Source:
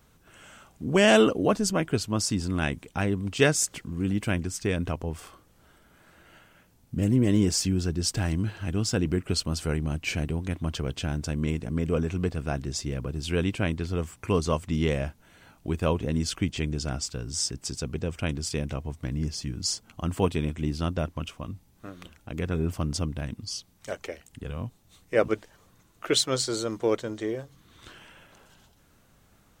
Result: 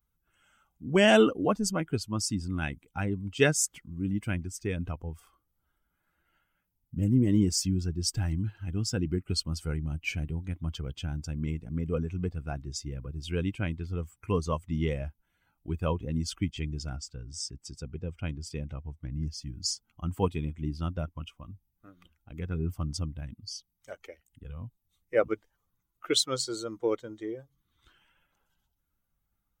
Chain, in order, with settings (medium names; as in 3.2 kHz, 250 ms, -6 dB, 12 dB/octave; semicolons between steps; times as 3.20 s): expander on every frequency bin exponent 1.5; 16.96–19.14 s: treble shelf 4.1 kHz -8 dB